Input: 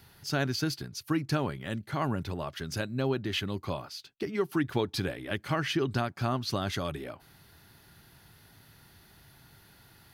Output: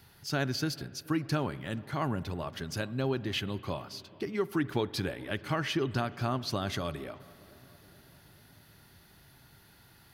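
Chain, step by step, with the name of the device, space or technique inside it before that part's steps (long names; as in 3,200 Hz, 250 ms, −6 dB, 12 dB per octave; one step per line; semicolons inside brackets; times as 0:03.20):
dub delay into a spring reverb (feedback echo with a low-pass in the loop 431 ms, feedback 65%, low-pass 1,300 Hz, level −22.5 dB; spring reverb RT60 2.5 s, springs 46 ms, chirp 80 ms, DRR 17.5 dB)
level −1.5 dB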